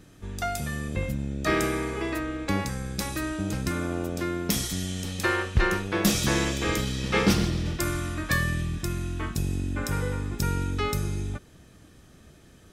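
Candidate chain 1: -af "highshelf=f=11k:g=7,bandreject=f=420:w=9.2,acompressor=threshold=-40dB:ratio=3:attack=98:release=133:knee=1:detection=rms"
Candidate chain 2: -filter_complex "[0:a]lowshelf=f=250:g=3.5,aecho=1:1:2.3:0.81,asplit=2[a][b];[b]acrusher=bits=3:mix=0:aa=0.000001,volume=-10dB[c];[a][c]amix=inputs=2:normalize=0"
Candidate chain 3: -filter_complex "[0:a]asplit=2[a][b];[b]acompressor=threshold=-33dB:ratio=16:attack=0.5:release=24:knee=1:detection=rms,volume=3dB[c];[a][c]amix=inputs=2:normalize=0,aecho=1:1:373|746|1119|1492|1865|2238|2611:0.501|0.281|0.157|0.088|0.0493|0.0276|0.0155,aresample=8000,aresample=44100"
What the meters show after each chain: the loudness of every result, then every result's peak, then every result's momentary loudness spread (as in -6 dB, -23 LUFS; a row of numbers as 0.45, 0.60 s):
-37.0, -22.0, -24.5 LUFS; -17.0, -1.0, -7.5 dBFS; 7, 8, 7 LU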